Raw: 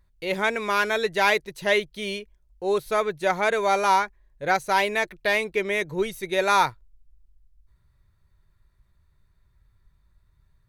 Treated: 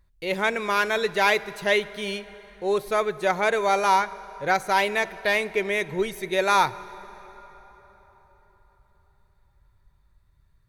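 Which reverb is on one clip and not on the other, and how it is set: plate-style reverb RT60 4.5 s, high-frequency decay 0.65×, DRR 16.5 dB

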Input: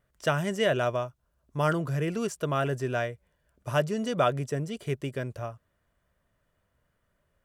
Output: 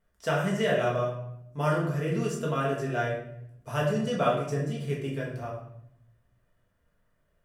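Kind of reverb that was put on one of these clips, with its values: simulated room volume 180 m³, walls mixed, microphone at 1.6 m; trim -6 dB

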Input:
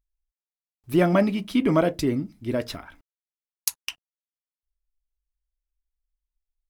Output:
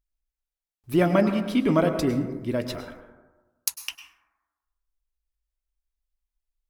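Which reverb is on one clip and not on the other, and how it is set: plate-style reverb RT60 1.2 s, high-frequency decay 0.3×, pre-delay 90 ms, DRR 8 dB; trim -1 dB

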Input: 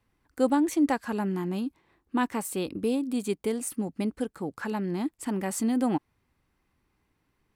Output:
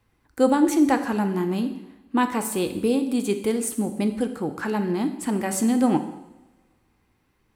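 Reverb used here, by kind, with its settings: two-slope reverb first 0.9 s, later 2.3 s, from -23 dB, DRR 7 dB; trim +5 dB

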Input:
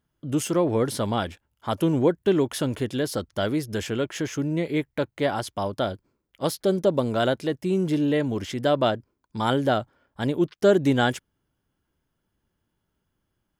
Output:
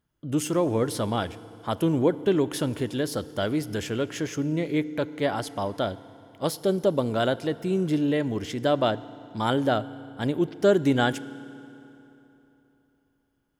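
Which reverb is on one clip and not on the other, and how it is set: FDN reverb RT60 3.3 s, high-frequency decay 0.75×, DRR 16 dB; trim -1.5 dB

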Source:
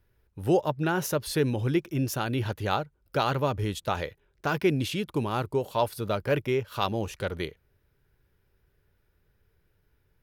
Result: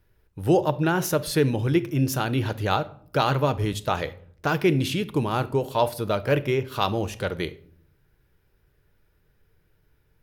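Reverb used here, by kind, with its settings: simulated room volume 800 m³, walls furnished, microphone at 0.54 m; trim +3.5 dB

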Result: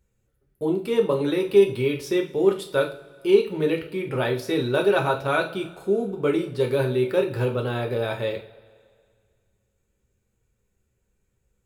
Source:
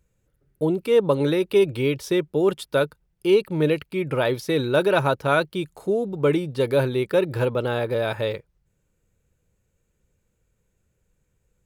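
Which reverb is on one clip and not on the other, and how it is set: two-slope reverb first 0.35 s, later 2.1 s, from -21 dB, DRR 1.5 dB; trim -4 dB

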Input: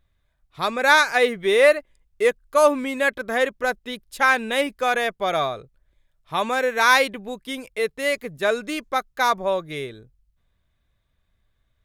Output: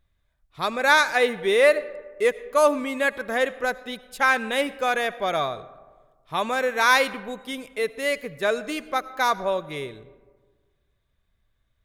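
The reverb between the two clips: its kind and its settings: algorithmic reverb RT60 1.5 s, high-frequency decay 0.4×, pre-delay 45 ms, DRR 17 dB; trim -2 dB

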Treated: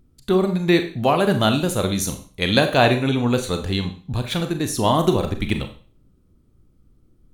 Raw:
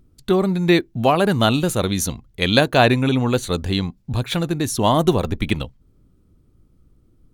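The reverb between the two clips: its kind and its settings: Schroeder reverb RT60 0.41 s, combs from 29 ms, DRR 6.5 dB; trim -2 dB

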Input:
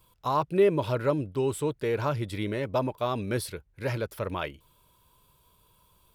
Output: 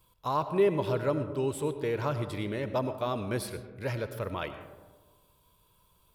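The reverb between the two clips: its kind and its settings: algorithmic reverb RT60 1.4 s, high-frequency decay 0.3×, pre-delay 55 ms, DRR 10 dB; trim -3 dB

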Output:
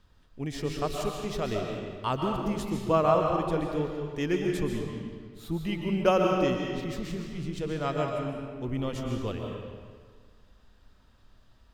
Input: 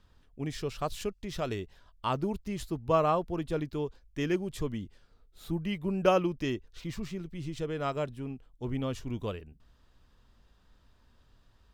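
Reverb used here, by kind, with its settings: algorithmic reverb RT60 1.7 s, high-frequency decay 0.8×, pre-delay 95 ms, DRR 1 dB; trim +1 dB

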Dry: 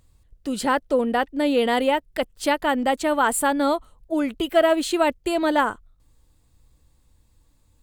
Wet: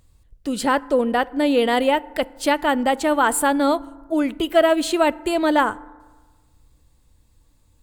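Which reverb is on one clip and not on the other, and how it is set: FDN reverb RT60 1.4 s, low-frequency decay 0.9×, high-frequency decay 0.4×, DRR 19.5 dB; trim +2 dB

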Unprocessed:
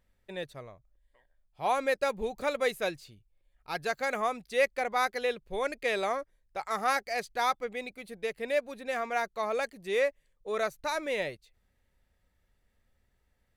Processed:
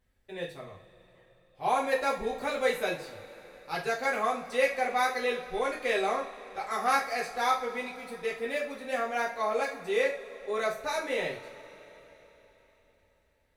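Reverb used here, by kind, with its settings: two-slope reverb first 0.33 s, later 4 s, from -22 dB, DRR -4.5 dB; trim -4.5 dB

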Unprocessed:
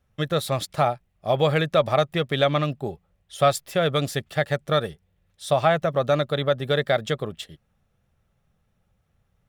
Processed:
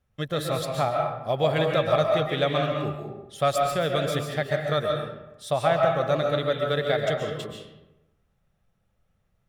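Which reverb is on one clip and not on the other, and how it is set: algorithmic reverb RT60 0.98 s, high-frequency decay 0.6×, pre-delay 95 ms, DRR 1 dB; trim -4.5 dB

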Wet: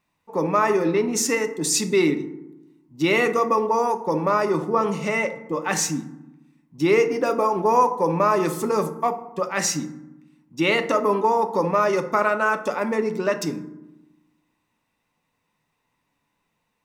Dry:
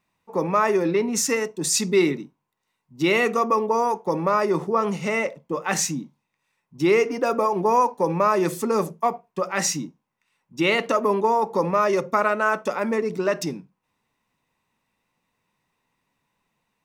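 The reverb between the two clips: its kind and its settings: FDN reverb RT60 0.98 s, low-frequency decay 1.35×, high-frequency decay 0.45×, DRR 9 dB

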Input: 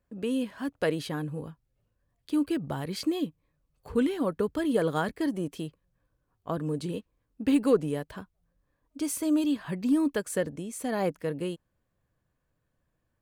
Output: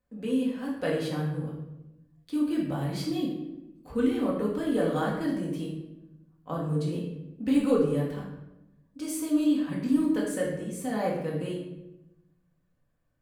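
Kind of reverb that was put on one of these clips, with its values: simulated room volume 330 m³, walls mixed, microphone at 2 m; trim -6.5 dB

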